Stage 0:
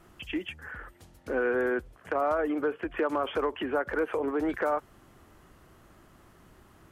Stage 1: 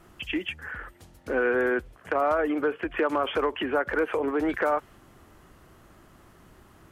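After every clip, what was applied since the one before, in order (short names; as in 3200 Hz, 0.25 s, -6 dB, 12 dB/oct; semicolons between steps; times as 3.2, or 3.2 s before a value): dynamic EQ 2500 Hz, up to +4 dB, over -49 dBFS, Q 0.92; gain +2.5 dB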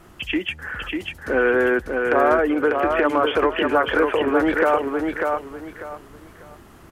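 feedback echo 0.595 s, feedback 26%, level -4 dB; gain +6 dB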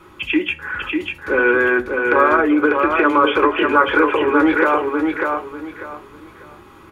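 reverb RT60 0.25 s, pre-delay 3 ms, DRR 4 dB; gain -4 dB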